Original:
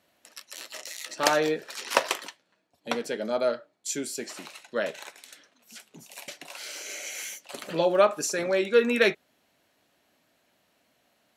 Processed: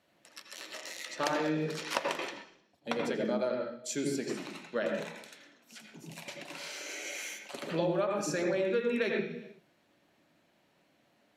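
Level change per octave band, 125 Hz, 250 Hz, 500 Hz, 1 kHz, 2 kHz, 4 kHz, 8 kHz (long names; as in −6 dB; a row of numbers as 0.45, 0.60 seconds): +3.0, −1.0, −6.5, −7.0, −6.5, −7.0, −8.0 decibels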